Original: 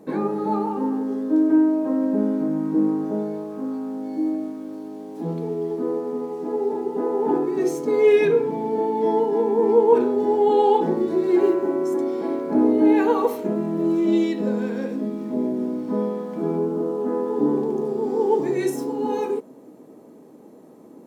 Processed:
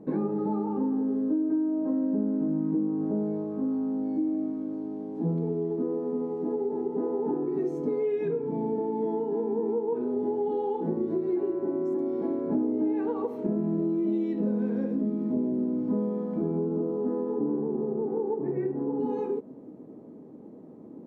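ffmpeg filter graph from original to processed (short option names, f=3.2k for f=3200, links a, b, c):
-filter_complex "[0:a]asettb=1/sr,asplit=3[a][b][c];[a]atrim=end=17.344[d];[b]atrim=start=17.34:end=19,asetpts=PTS-STARTPTS,afade=t=in:d=0.004:c=qsin,afade=t=out:st=1.656:d=0.004:c=qsin,lowpass=f=2k:w=0.5412,lowpass=f=2k:w=1.3066,bandreject=f=50:t=h:w=6,bandreject=f=100:t=h:w=6,bandreject=f=150:t=h:w=6,bandreject=f=200:t=h:w=6,bandreject=f=250:t=h:w=6,bandreject=f=300:t=h:w=6,bandreject=f=350:t=h:w=6,bandreject=f=400:t=h:w=6[e];[c]atrim=start=18.996[f];[d][e]acrossfade=d=0.004:c1=hsin:c2=qsin[g];[g][f]acrossfade=d=0.004:c1=qsin:c2=hsin,lowpass=f=1.1k:p=1,acompressor=threshold=-25dB:ratio=6,lowshelf=f=330:g=11.5,volume=-5.5dB"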